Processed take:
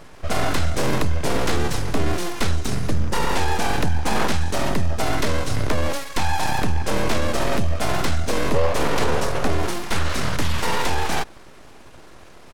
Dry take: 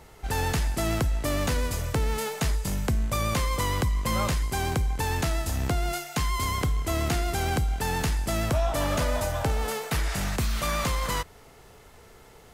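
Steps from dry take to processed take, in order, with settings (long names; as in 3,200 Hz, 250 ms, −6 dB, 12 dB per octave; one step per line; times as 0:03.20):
high-shelf EQ 7,800 Hz −8.5 dB
full-wave rectification
pitch shifter −4 semitones
level +9 dB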